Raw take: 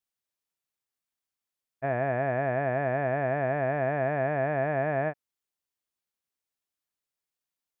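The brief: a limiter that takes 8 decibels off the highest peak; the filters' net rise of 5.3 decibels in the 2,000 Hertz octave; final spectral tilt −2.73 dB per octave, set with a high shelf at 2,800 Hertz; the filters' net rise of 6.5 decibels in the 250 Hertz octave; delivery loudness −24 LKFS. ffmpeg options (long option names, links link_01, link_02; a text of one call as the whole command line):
ffmpeg -i in.wav -af "equalizer=frequency=250:width_type=o:gain=8,equalizer=frequency=2000:width_type=o:gain=8,highshelf=frequency=2800:gain=-5,volume=8dB,alimiter=limit=-13.5dB:level=0:latency=1" out.wav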